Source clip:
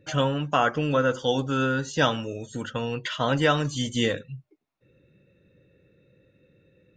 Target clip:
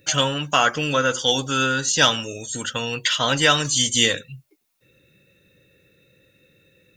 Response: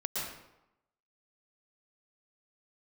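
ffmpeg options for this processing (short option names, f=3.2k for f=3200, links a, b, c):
-af "acontrast=28,crystalizer=i=9:c=0,volume=-6dB"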